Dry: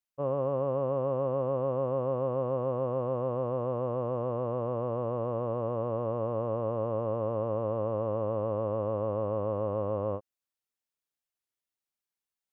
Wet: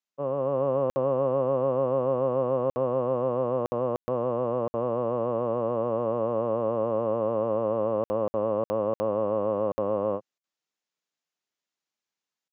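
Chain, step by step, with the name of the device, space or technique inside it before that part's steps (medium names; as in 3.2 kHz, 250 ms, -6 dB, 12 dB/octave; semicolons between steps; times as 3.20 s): call with lost packets (high-pass 140 Hz 24 dB/octave; resampled via 16 kHz; level rider gain up to 4 dB; lost packets of 60 ms random); trim +1 dB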